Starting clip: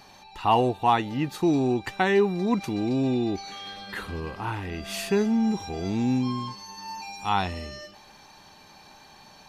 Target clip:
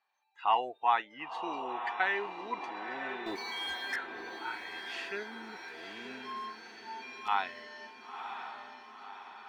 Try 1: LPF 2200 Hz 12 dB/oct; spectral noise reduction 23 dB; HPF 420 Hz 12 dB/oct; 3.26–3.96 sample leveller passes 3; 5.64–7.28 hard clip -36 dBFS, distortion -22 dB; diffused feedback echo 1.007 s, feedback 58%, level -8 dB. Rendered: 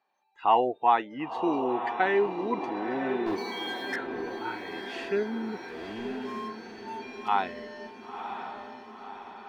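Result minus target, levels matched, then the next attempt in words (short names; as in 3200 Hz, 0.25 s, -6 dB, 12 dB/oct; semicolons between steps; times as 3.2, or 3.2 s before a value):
500 Hz band +6.5 dB
LPF 2200 Hz 12 dB/oct; spectral noise reduction 23 dB; HPF 1100 Hz 12 dB/oct; 3.26–3.96 sample leveller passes 3; 5.64–7.28 hard clip -36 dBFS, distortion -33 dB; diffused feedback echo 1.007 s, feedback 58%, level -8 dB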